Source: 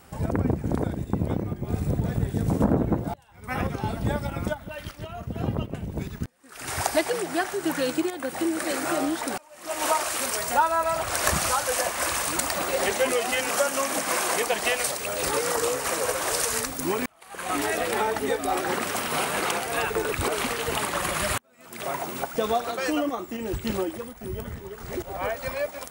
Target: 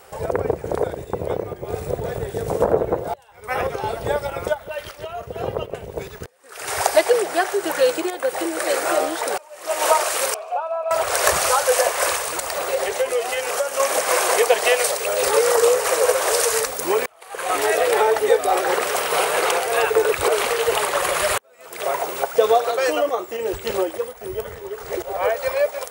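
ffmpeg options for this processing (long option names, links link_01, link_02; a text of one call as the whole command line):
ffmpeg -i in.wav -filter_complex "[0:a]asettb=1/sr,asplit=3[link_01][link_02][link_03];[link_01]atrim=end=10.344[link_04];[link_02]atrim=start=10.34:end=10.91,asetpts=PTS-STARTPTS,afade=type=in:duration=0.004:curve=qsin,afade=type=out:start_time=0.566:duration=0.004:curve=qsin,asplit=3[link_05][link_06][link_07];[link_05]bandpass=frequency=730:width_type=q:width=8,volume=0dB[link_08];[link_06]bandpass=frequency=1090:width_type=q:width=8,volume=-6dB[link_09];[link_07]bandpass=frequency=2440:width_type=q:width=8,volume=-9dB[link_10];[link_08][link_09][link_10]amix=inputs=3:normalize=0[link_11];[link_03]atrim=start=10.906[link_12];[link_04][link_11]acrossfade=duration=0.004:curve1=hsin:curve2=qsin[link_13];[link_13][link_12]acrossfade=duration=0.004:curve1=qsin:curve2=hsin,asettb=1/sr,asplit=3[link_14][link_15][link_16];[link_14]atrim=end=12.154[link_17];[link_15]atrim=start=12.15:end=13.8,asetpts=PTS-STARTPTS,afade=type=in:duration=0.004:curve=qsin,afade=type=out:start_time=1.646:duration=0.004:curve=qsin,acrossover=split=160[link_18][link_19];[link_19]acompressor=threshold=-28dB:ratio=6[link_20];[link_18][link_20]amix=inputs=2:normalize=0[link_21];[link_16]atrim=start=13.796[link_22];[link_17][link_21]acrossfade=duration=0.004:curve1=hsin:curve2=qsin[link_23];[link_23][link_22]acrossfade=duration=0.004:curve1=qsin:curve2=hsin,lowshelf=frequency=340:width_type=q:width=3:gain=-9.5,volume=5dB" out.wav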